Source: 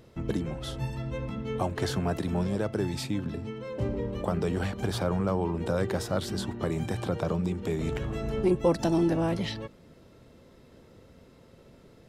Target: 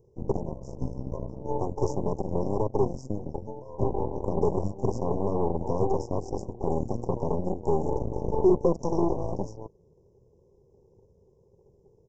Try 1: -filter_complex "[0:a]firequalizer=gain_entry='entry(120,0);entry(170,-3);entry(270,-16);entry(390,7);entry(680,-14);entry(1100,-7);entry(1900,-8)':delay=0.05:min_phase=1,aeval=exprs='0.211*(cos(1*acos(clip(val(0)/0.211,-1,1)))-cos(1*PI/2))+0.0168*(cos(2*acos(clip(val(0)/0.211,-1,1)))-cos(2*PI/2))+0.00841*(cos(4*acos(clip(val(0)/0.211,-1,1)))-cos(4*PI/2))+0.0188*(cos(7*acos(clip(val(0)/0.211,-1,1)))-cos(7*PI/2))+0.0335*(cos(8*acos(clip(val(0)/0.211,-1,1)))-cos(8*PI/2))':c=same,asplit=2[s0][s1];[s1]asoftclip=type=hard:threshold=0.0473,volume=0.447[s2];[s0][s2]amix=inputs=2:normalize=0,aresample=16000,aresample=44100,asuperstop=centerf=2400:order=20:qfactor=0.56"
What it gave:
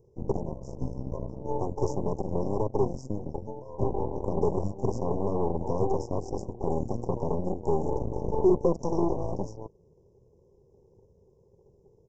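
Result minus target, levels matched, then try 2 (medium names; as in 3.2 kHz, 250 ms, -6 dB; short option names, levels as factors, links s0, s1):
hard clipper: distortion +8 dB
-filter_complex "[0:a]firequalizer=gain_entry='entry(120,0);entry(170,-3);entry(270,-16);entry(390,7);entry(680,-14);entry(1100,-7);entry(1900,-8)':delay=0.05:min_phase=1,aeval=exprs='0.211*(cos(1*acos(clip(val(0)/0.211,-1,1)))-cos(1*PI/2))+0.0168*(cos(2*acos(clip(val(0)/0.211,-1,1)))-cos(2*PI/2))+0.00841*(cos(4*acos(clip(val(0)/0.211,-1,1)))-cos(4*PI/2))+0.0188*(cos(7*acos(clip(val(0)/0.211,-1,1)))-cos(7*PI/2))+0.0335*(cos(8*acos(clip(val(0)/0.211,-1,1)))-cos(8*PI/2))':c=same,asplit=2[s0][s1];[s1]asoftclip=type=hard:threshold=0.1,volume=0.447[s2];[s0][s2]amix=inputs=2:normalize=0,aresample=16000,aresample=44100,asuperstop=centerf=2400:order=20:qfactor=0.56"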